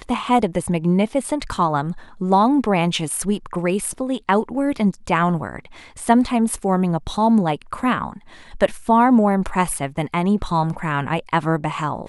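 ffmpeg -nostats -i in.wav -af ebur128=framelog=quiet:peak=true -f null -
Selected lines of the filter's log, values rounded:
Integrated loudness:
  I:         -20.0 LUFS
  Threshold: -30.2 LUFS
Loudness range:
  LRA:         1.8 LU
  Threshold: -40.1 LUFS
  LRA low:   -21.0 LUFS
  LRA high:  -19.2 LUFS
True peak:
  Peak:       -1.3 dBFS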